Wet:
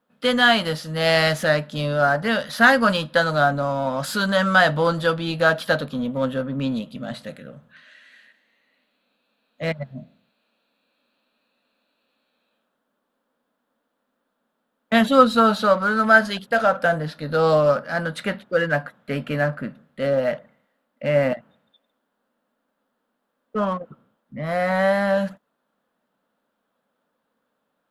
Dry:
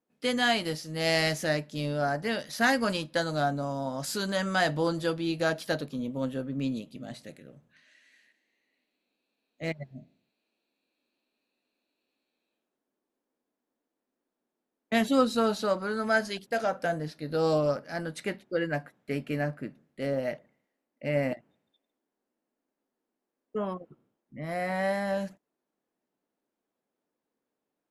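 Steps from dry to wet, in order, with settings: EQ curve 120 Hz 0 dB, 220 Hz +4 dB, 360 Hz -8 dB, 530 Hz +5 dB, 760 Hz +2 dB, 1400 Hz +10 dB, 2200 Hz -1 dB, 3400 Hz +5 dB, 5800 Hz -7 dB, 11000 Hz -3 dB; in parallel at -5 dB: soft clip -39 dBFS, distortion -1 dB; on the sum: gain +5 dB

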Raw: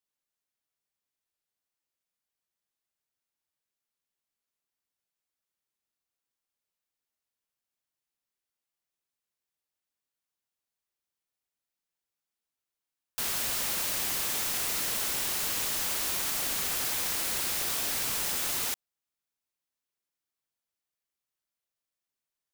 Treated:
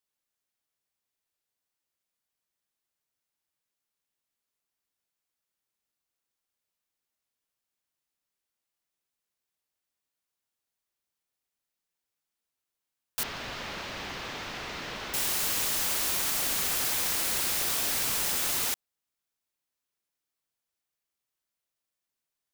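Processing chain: 13.23–15.14 air absorption 230 m; gain +2 dB

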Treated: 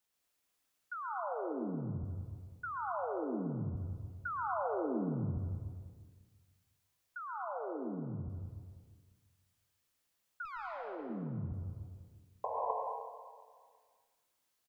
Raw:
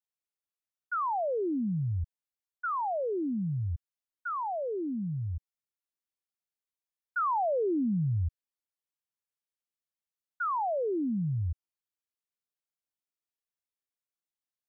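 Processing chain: 12.44–12.71 painted sound noise 440–1100 Hz -33 dBFS; negative-ratio compressor -41 dBFS, ratio -1; feedback echo 0.35 s, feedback 34%, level -18.5 dB; 10.45–11.1 tube stage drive 43 dB, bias 0.75; plate-style reverb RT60 1.4 s, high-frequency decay 0.9×, pre-delay 0.1 s, DRR -1 dB

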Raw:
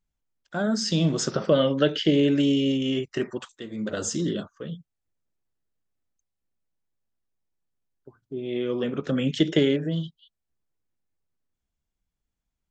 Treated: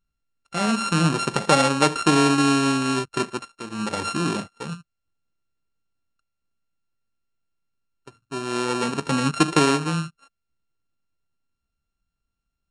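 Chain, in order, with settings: sample sorter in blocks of 32 samples; downsampling 22050 Hz; gain +2.5 dB

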